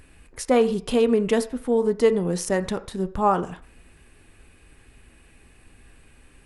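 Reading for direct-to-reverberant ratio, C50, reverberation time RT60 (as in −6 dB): 10.0 dB, 16.5 dB, 0.45 s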